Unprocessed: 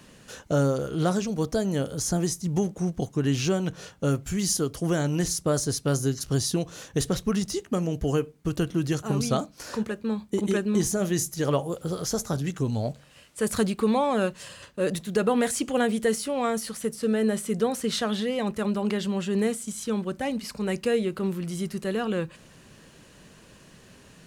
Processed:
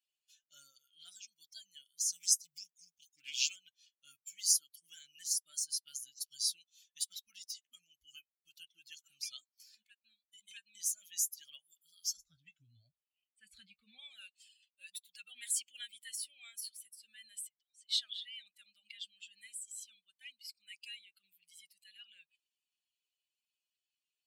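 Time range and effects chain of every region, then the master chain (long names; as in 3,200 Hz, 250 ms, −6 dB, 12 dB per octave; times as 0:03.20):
0:02.09–0:03.56: high-shelf EQ 2,800 Hz +7 dB + highs frequency-modulated by the lows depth 0.21 ms
0:12.17–0:13.99: RIAA equalisation playback + double-tracking delay 25 ms −11 dB
0:17.47–0:17.89: low-pass filter 8,900 Hz 24 dB per octave + downward compressor 12 to 1, threshold −36 dBFS
whole clip: spectral dynamics exaggerated over time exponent 2; inverse Chebyshev high-pass filter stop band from 1,100 Hz, stop band 50 dB; level +1.5 dB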